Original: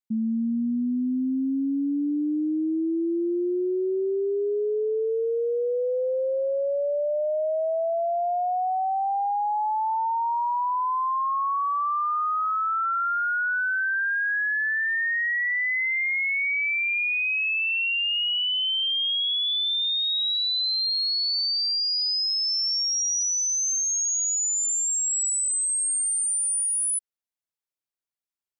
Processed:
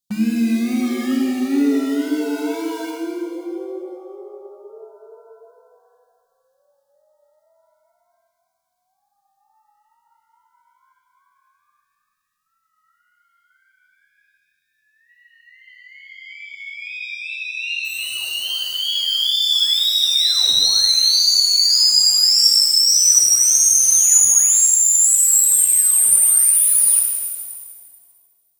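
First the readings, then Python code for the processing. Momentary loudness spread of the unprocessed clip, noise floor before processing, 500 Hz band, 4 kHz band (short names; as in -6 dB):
4 LU, under -85 dBFS, n/a, +8.5 dB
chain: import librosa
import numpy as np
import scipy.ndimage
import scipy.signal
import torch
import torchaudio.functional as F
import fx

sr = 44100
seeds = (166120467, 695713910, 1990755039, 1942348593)

p1 = scipy.signal.sosfilt(scipy.signal.cheby2(4, 50, [500.0, 1800.0], 'bandstop', fs=sr, output='sos'), x)
p2 = (np.mod(10.0 ** (35.5 / 20.0) * p1 + 1.0, 2.0) - 1.0) / 10.0 ** (35.5 / 20.0)
p3 = p1 + F.gain(torch.from_numpy(p2), -6.0).numpy()
p4 = fx.wow_flutter(p3, sr, seeds[0], rate_hz=2.1, depth_cents=77.0)
p5 = fx.rev_shimmer(p4, sr, seeds[1], rt60_s=1.7, semitones=7, shimmer_db=-8, drr_db=-1.0)
y = F.gain(torch.from_numpy(p5), 7.0).numpy()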